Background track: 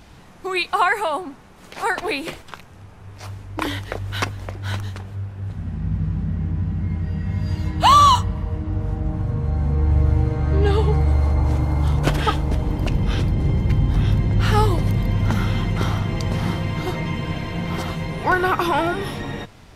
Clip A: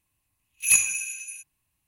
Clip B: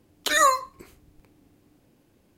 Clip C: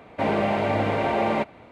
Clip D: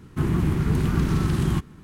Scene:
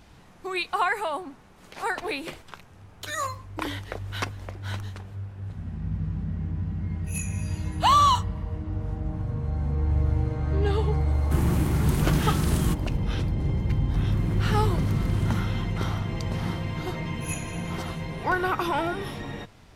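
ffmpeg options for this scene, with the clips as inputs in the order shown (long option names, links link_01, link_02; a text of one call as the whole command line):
ffmpeg -i bed.wav -i cue0.wav -i cue1.wav -i cue2.wav -i cue3.wav -filter_complex "[1:a]asplit=2[link_01][link_02];[4:a]asplit=2[link_03][link_04];[0:a]volume=-6.5dB[link_05];[link_01]flanger=delay=20:depth=6.7:speed=1.3[link_06];[link_03]crystalizer=i=2:c=0[link_07];[link_04]dynaudnorm=framelen=260:gausssize=3:maxgain=7dB[link_08];[link_02]tiltshelf=frequency=970:gain=8.5[link_09];[2:a]atrim=end=2.37,asetpts=PTS-STARTPTS,volume=-11.5dB,afade=type=in:duration=0.004:curve=hsin,afade=type=out:start_time=2.366:duration=0.004:curve=hsin,adelay=2770[link_10];[link_06]atrim=end=1.87,asetpts=PTS-STARTPTS,volume=-14dB,afade=type=in:duration=0.004:curve=hsin,afade=type=out:start_time=1.866:duration=0.004:curve=hsin,adelay=6440[link_11];[link_07]atrim=end=1.83,asetpts=PTS-STARTPTS,volume=-3dB,afade=type=in:duration=0.004:curve=hsin,afade=type=out:start_time=1.826:duration=0.004:curve=hsin,adelay=491274S[link_12];[link_08]atrim=end=1.83,asetpts=PTS-STARTPTS,volume=-14.5dB,afade=type=in:duration=0.004:curve=hsin,afade=type=out:start_time=1.826:duration=0.004:curve=hsin,adelay=608580S[link_13];[link_09]atrim=end=1.87,asetpts=PTS-STARTPTS,volume=-10dB,afade=type=in:duration=0.004:curve=hsin,afade=type=out:start_time=1.866:duration=0.004:curve=hsin,adelay=16580[link_14];[link_05][link_10][link_11][link_12][link_13][link_14]amix=inputs=6:normalize=0" out.wav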